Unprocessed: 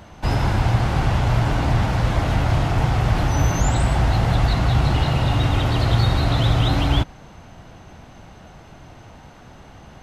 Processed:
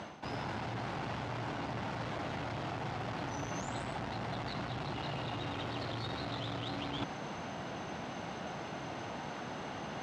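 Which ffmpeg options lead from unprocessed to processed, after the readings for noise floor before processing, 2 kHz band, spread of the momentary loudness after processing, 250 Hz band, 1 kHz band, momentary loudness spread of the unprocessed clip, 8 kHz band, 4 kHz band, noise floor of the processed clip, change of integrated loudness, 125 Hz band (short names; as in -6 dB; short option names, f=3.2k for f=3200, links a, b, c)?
-45 dBFS, -13.0 dB, 3 LU, -15.5 dB, -13.5 dB, 2 LU, -17.0 dB, -14.5 dB, -43 dBFS, -20.0 dB, -23.5 dB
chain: -af "asoftclip=type=tanh:threshold=-16.5dB,highpass=190,lowpass=6k,areverse,acompressor=threshold=-42dB:ratio=8,areverse,volume=5.5dB"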